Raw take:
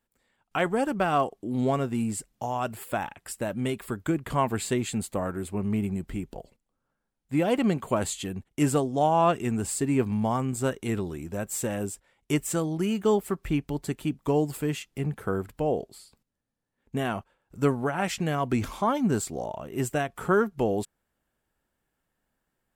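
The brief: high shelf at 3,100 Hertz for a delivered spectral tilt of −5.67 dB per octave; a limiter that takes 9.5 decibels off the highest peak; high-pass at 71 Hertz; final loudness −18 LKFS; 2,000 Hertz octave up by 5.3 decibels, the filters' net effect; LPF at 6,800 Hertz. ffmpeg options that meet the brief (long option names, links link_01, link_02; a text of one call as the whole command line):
ffmpeg -i in.wav -af "highpass=71,lowpass=6800,equalizer=frequency=2000:width_type=o:gain=9,highshelf=frequency=3100:gain=-5.5,volume=12.5dB,alimiter=limit=-6dB:level=0:latency=1" out.wav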